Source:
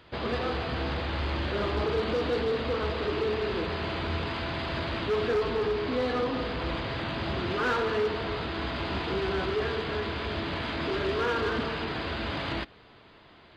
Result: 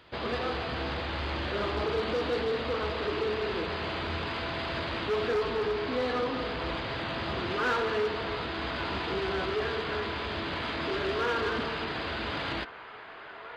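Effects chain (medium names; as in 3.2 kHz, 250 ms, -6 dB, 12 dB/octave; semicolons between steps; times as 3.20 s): bass shelf 330 Hz -5 dB; feedback echo behind a band-pass 1125 ms, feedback 73%, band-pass 1.2 kHz, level -12.5 dB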